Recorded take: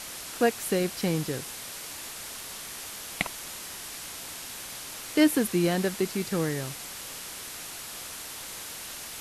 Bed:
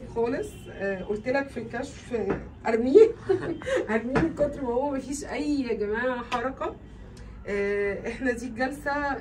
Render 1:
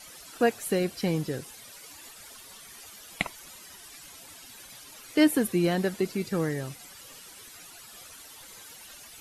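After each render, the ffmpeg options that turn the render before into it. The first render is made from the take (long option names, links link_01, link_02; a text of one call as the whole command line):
ffmpeg -i in.wav -af "afftdn=noise_reduction=13:noise_floor=-40" out.wav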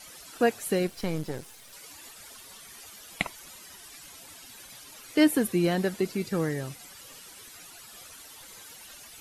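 ffmpeg -i in.wav -filter_complex "[0:a]asettb=1/sr,asplit=3[link_01][link_02][link_03];[link_01]atrim=end=0.874[link_04];[link_02]atrim=start=0.87:end=1.73,asetpts=PTS-STARTPTS,afade=type=in:duration=0.004:curve=qsin,afade=type=out:start_time=0.856:duration=0.004:curve=qsin,aeval=exprs='if(lt(val(0),0),0.251*val(0),val(0))':channel_layout=same[link_05];[link_03]atrim=start=1.726[link_06];[link_04][link_05]acrossfade=duration=0.004:curve1=hsin:curve2=qsin[link_07];[link_07][link_06]acrossfade=duration=0.004:curve1=qsin:curve2=hsin" out.wav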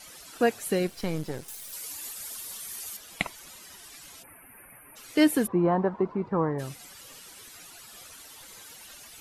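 ffmpeg -i in.wav -filter_complex "[0:a]asettb=1/sr,asplit=3[link_01][link_02][link_03];[link_01]atrim=end=1.484[link_04];[link_02]atrim=start=1.48:end=2.97,asetpts=PTS-STARTPTS,afade=type=in:duration=0.004:curve=qsin,afade=type=out:start_time=1.486:duration=0.004:curve=qsin,aemphasis=mode=production:type=50kf[link_05];[link_03]atrim=start=2.966[link_06];[link_04][link_05]acrossfade=duration=0.004:curve1=hsin:curve2=qsin[link_07];[link_07][link_06]acrossfade=duration=0.004:curve1=qsin:curve2=hsin,asplit=3[link_08][link_09][link_10];[link_08]afade=type=out:start_time=4.22:duration=0.02[link_11];[link_09]asuperstop=centerf=5100:order=12:qfactor=0.72,afade=type=in:start_time=4.22:duration=0.02,afade=type=out:start_time=4.95:duration=0.02[link_12];[link_10]afade=type=in:start_time=4.95:duration=0.02[link_13];[link_11][link_12][link_13]amix=inputs=3:normalize=0,asplit=3[link_14][link_15][link_16];[link_14]afade=type=out:start_time=5.46:duration=0.02[link_17];[link_15]lowpass=frequency=1000:width_type=q:width=6,afade=type=in:start_time=5.46:duration=0.02,afade=type=out:start_time=6.58:duration=0.02[link_18];[link_16]afade=type=in:start_time=6.58:duration=0.02[link_19];[link_17][link_18][link_19]amix=inputs=3:normalize=0" out.wav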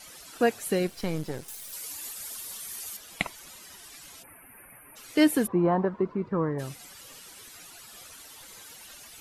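ffmpeg -i in.wav -filter_complex "[0:a]asettb=1/sr,asplit=3[link_01][link_02][link_03];[link_01]atrim=end=5.854[link_04];[link_02]atrim=start=5.85:end=6.57,asetpts=PTS-STARTPTS,afade=type=in:duration=0.004:curve=qsin,afade=type=out:start_time=0.716:duration=0.004:curve=qsin,equalizer=frequency=800:width_type=o:width=0.54:gain=-10[link_05];[link_03]atrim=start=6.566[link_06];[link_04][link_05]acrossfade=duration=0.004:curve1=hsin:curve2=qsin[link_07];[link_07][link_06]acrossfade=duration=0.004:curve1=qsin:curve2=hsin" out.wav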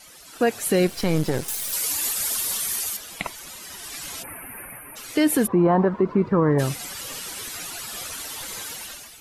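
ffmpeg -i in.wav -af "dynaudnorm=framelen=210:gausssize=5:maxgain=13.5dB,alimiter=limit=-11dB:level=0:latency=1:release=60" out.wav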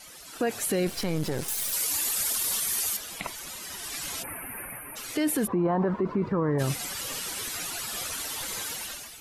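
ffmpeg -i in.wav -af "alimiter=limit=-18.5dB:level=0:latency=1:release=21" out.wav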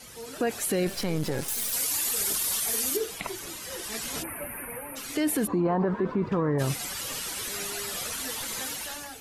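ffmpeg -i in.wav -i bed.wav -filter_complex "[1:a]volume=-16dB[link_01];[0:a][link_01]amix=inputs=2:normalize=0" out.wav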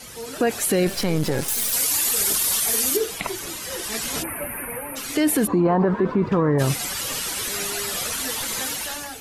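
ffmpeg -i in.wav -af "volume=6.5dB" out.wav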